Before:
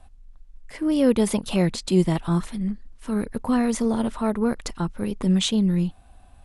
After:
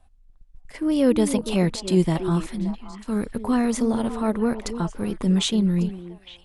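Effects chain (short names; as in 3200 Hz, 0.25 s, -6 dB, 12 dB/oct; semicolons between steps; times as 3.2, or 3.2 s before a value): gate -40 dBFS, range -8 dB; delay with a stepping band-pass 0.287 s, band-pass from 330 Hz, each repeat 1.4 oct, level -7 dB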